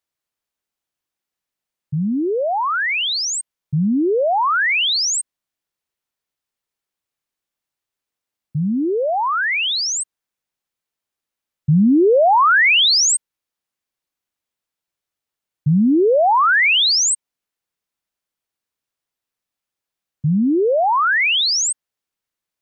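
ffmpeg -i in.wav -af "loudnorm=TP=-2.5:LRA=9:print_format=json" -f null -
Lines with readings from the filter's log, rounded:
"input_i" : "-15.9",
"input_tp" : "-9.4",
"input_lra" : "10.9",
"input_thresh" : "-26.1",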